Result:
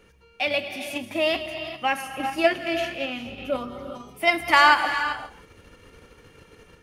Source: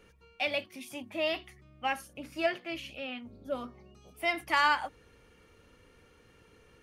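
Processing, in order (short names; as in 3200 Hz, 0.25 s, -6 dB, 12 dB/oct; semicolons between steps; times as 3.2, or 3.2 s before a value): reverse delay 0.122 s, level -13 dB; AGC gain up to 4.5 dB; non-linear reverb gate 0.43 s rising, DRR 8 dB; in parallel at +0.5 dB: level quantiser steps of 11 dB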